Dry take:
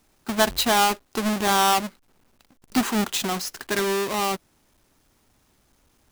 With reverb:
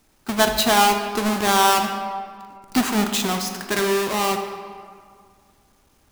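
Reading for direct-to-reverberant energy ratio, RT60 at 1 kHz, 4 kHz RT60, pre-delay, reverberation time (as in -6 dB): 5.0 dB, 2.0 s, 1.2 s, 18 ms, 2.0 s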